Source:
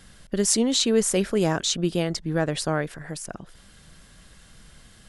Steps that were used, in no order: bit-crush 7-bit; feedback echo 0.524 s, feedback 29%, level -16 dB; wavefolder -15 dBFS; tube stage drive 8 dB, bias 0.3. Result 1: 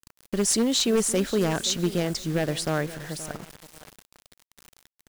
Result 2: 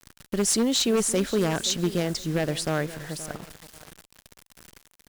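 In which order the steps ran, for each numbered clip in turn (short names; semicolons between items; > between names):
tube stage > wavefolder > feedback echo > bit-crush; wavefolder > feedback echo > bit-crush > tube stage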